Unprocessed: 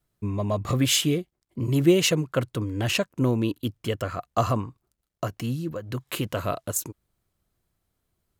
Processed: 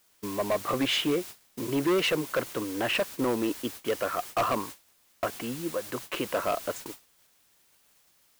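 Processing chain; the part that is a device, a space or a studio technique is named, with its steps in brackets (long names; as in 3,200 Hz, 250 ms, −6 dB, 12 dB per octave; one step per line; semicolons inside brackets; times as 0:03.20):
aircraft radio (band-pass filter 380–2,400 Hz; hard clipping −25.5 dBFS, distortion −8 dB; white noise bed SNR 12 dB; noise gate −43 dBFS, range −22 dB)
level +4 dB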